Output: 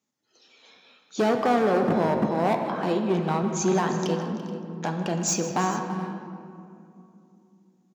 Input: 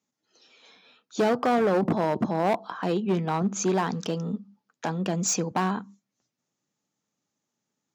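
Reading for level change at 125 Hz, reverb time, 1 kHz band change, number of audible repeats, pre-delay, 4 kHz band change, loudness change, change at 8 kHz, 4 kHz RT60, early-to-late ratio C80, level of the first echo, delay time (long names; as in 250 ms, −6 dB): +1.0 dB, 2.7 s, +2.0 dB, 3, 3 ms, +1.0 dB, +1.0 dB, +0.5 dB, 1.2 s, 6.0 dB, −15.0 dB, 156 ms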